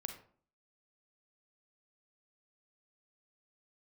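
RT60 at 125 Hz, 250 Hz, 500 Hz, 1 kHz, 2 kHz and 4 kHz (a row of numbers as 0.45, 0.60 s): 0.55, 0.60, 0.50, 0.50, 0.35, 0.30 s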